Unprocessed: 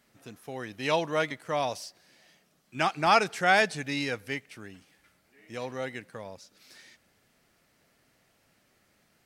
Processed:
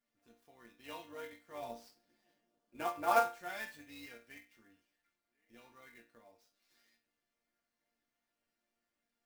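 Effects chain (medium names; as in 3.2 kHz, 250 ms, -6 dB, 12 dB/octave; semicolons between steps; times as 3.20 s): 1.61–3.19 s: peaking EQ 150 Hz -> 730 Hz +14 dB 2.7 oct; chord resonator A#3 major, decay 0.32 s; AM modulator 200 Hz, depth 30%; sampling jitter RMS 0.02 ms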